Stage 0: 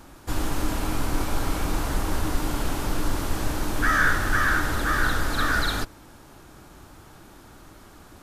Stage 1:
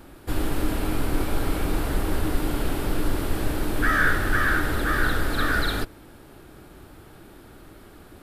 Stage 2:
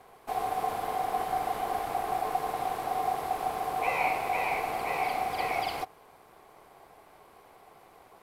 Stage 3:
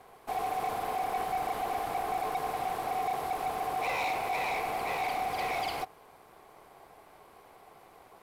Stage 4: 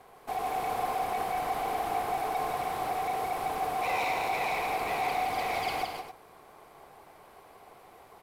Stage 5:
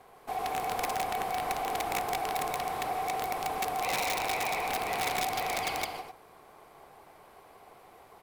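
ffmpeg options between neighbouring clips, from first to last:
ffmpeg -i in.wav -af "equalizer=frequency=400:width_type=o:width=0.67:gain=4,equalizer=frequency=1000:width_type=o:width=0.67:gain=-5,equalizer=frequency=6300:width_type=o:width=0.67:gain=-10,volume=1dB" out.wav
ffmpeg -i in.wav -af "aeval=exprs='val(0)*sin(2*PI*750*n/s)':channel_layout=same,volume=-6dB" out.wav
ffmpeg -i in.wav -af "asoftclip=type=hard:threshold=-27dB" out.wav
ffmpeg -i in.wav -af "aecho=1:1:166.2|268.2:0.631|0.316" out.wav
ffmpeg -i in.wav -af "aeval=exprs='(mod(14.1*val(0)+1,2)-1)/14.1':channel_layout=same,volume=-1dB" out.wav

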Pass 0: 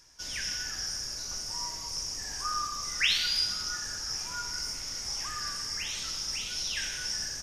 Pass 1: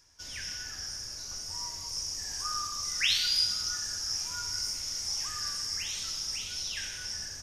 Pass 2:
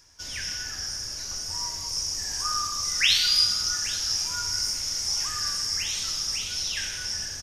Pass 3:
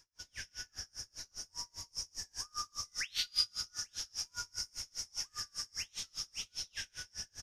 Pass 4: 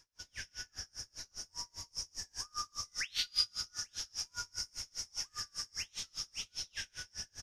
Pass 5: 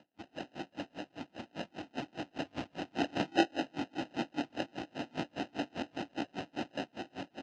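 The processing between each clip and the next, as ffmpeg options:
ffmpeg -i in.wav -filter_complex "[0:a]equalizer=frequency=89:width_type=o:width=0.26:gain=11.5,acrossover=split=3400[link_01][link_02];[link_02]dynaudnorm=framelen=410:gausssize=9:maxgain=7dB[link_03];[link_01][link_03]amix=inputs=2:normalize=0,volume=-4.5dB" out.wav
ffmpeg -i in.wav -af "aecho=1:1:829:0.141,volume=6dB" out.wav
ffmpeg -i in.wav -af "aeval=exprs='val(0)*pow(10,-35*(0.5-0.5*cos(2*PI*5*n/s))/20)':channel_layout=same,volume=-7.5dB" out.wav
ffmpeg -i in.wav -af "highshelf=frequency=9400:gain=-5,volume=1dB" out.wav
ffmpeg -i in.wav -af "acrusher=samples=39:mix=1:aa=0.000001,highpass=190,equalizer=frequency=290:width_type=q:width=4:gain=7,equalizer=frequency=430:width_type=q:width=4:gain=-7,equalizer=frequency=730:width_type=q:width=4:gain=6,equalizer=frequency=2800:width_type=q:width=4:gain=7,lowpass=frequency=5700:width=0.5412,lowpass=frequency=5700:width=1.3066,volume=3.5dB" out.wav

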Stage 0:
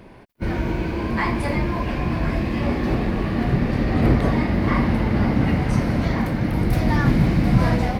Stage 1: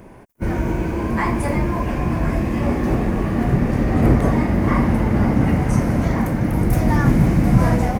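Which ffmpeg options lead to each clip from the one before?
ffmpeg -i in.wav -af "firequalizer=gain_entry='entry(950,0);entry(4200,-10);entry(6400,5)':delay=0.05:min_phase=1,volume=2.5dB" out.wav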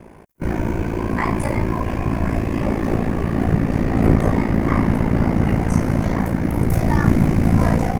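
ffmpeg -i in.wav -af "aeval=exprs='val(0)*sin(2*PI*28*n/s)':channel_layout=same,volume=2.5dB" out.wav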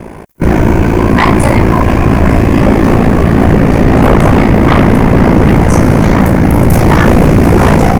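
ffmpeg -i in.wav -af "aeval=exprs='0.891*sin(PI/2*3.98*val(0)/0.891)':channel_layout=same" out.wav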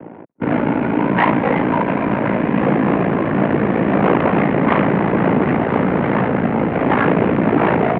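ffmpeg -i in.wav -af "adynamicsmooth=sensitivity=1:basefreq=660,highpass=frequency=250:width_type=q:width=0.5412,highpass=frequency=250:width_type=q:width=1.307,lowpass=frequency=2900:width_type=q:width=0.5176,lowpass=frequency=2900:width_type=q:width=0.7071,lowpass=frequency=2900:width_type=q:width=1.932,afreqshift=-65,volume=-5dB" out.wav

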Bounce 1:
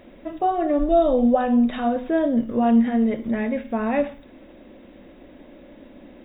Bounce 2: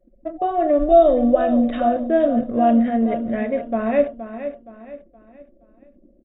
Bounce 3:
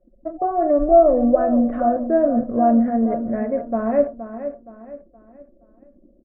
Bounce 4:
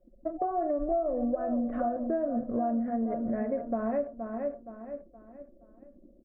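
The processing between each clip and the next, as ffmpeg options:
ffmpeg -i in.wav -filter_complex "[0:a]anlmdn=6.31,superequalizer=8b=2:9b=0.501,asplit=2[link_01][link_02];[link_02]aecho=0:1:470|940|1410|1880:0.282|0.104|0.0386|0.0143[link_03];[link_01][link_03]amix=inputs=2:normalize=0" out.wav
ffmpeg -i in.wav -af "lowpass=frequency=1500:width=0.5412,lowpass=frequency=1500:width=1.3066" out.wav
ffmpeg -i in.wav -af "acompressor=threshold=-24dB:ratio=6,volume=-3dB" out.wav

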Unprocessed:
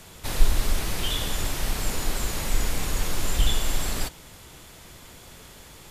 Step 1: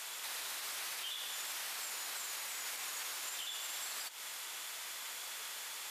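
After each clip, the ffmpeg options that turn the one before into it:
ffmpeg -i in.wav -af "highpass=1100,acompressor=threshold=-38dB:ratio=6,alimiter=level_in=13dB:limit=-24dB:level=0:latency=1:release=136,volume=-13dB,volume=5dB" out.wav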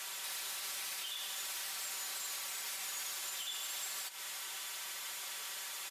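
ffmpeg -i in.wav -filter_complex "[0:a]aecho=1:1:5.2:0.78,acrossover=split=210|3000[link_01][link_02][link_03];[link_02]acompressor=threshold=-46dB:ratio=6[link_04];[link_01][link_04][link_03]amix=inputs=3:normalize=0,asoftclip=type=tanh:threshold=-30dB" out.wav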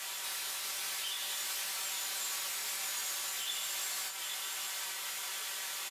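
ffmpeg -i in.wav -af "acrusher=bits=7:mode=log:mix=0:aa=0.000001,aecho=1:1:816:0.501,flanger=delay=18.5:depth=2.2:speed=1.3,volume=6dB" out.wav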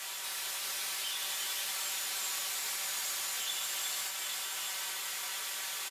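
ffmpeg -i in.wav -af "aecho=1:1:359:0.596" out.wav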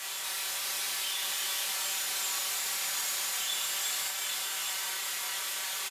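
ffmpeg -i in.wav -filter_complex "[0:a]asplit=2[link_01][link_02];[link_02]adelay=31,volume=-4dB[link_03];[link_01][link_03]amix=inputs=2:normalize=0,volume=2dB" out.wav

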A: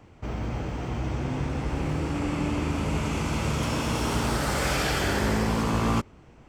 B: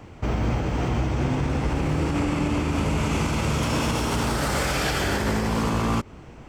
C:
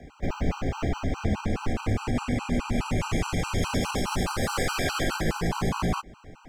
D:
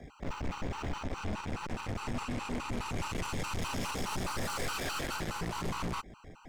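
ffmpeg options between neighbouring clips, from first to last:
ffmpeg -i in.wav -af "alimiter=limit=-23.5dB:level=0:latency=1:release=131,volume=8.5dB" out.wav
ffmpeg -i in.wav -af "afreqshift=-49,afftfilt=real='re*gt(sin(2*PI*4.8*pts/sr)*(1-2*mod(floor(b*sr/1024/790),2)),0)':imag='im*gt(sin(2*PI*4.8*pts/sr)*(1-2*mod(floor(b*sr/1024/790),2)),0)':win_size=1024:overlap=0.75" out.wav
ffmpeg -i in.wav -af "aeval=exprs='(tanh(44.7*val(0)+0.65)-tanh(0.65))/44.7':channel_layout=same" out.wav

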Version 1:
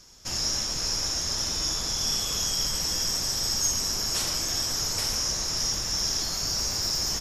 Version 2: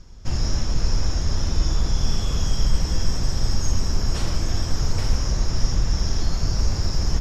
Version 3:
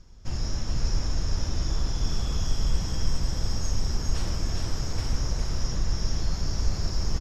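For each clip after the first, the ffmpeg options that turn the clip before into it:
ffmpeg -i in.wav -af "aemphasis=mode=reproduction:type=riaa,volume=2dB" out.wav
ffmpeg -i in.wav -af "aecho=1:1:407:0.631,volume=-6.5dB" out.wav

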